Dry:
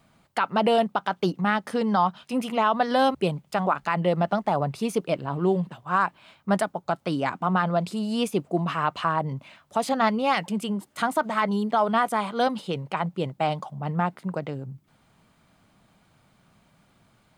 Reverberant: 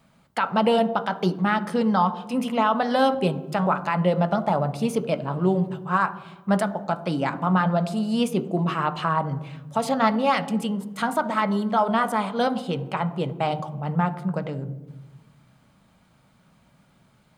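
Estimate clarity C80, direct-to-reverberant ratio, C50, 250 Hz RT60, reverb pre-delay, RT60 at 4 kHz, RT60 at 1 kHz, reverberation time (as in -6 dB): 16.5 dB, 8.0 dB, 14.5 dB, 1.5 s, 3 ms, 0.75 s, 1.0 s, 1.1 s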